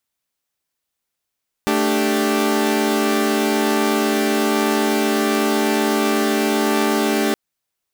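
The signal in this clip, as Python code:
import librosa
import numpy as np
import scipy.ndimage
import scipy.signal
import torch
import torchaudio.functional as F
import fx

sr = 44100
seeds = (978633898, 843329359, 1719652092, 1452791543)

y = fx.chord(sr, length_s=5.67, notes=(57, 62, 67), wave='saw', level_db=-18.0)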